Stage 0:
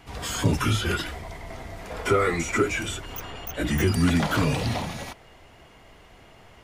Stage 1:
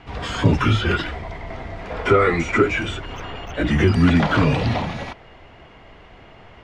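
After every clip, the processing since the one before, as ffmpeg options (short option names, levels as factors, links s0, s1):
-af "lowpass=3300,volume=2"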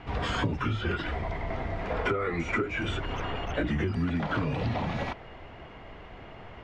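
-af "highshelf=f=4200:g=-9,acompressor=threshold=0.0562:ratio=16"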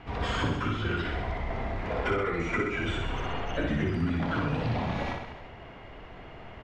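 -af "aecho=1:1:60|126|198.6|278.5|366.3:0.631|0.398|0.251|0.158|0.1,volume=0.794"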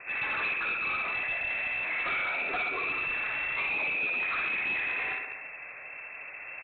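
-af "lowpass=f=2300:t=q:w=0.5098,lowpass=f=2300:t=q:w=0.6013,lowpass=f=2300:t=q:w=0.9,lowpass=f=2300:t=q:w=2.563,afreqshift=-2700,aresample=8000,asoftclip=type=tanh:threshold=0.0335,aresample=44100,volume=1.33"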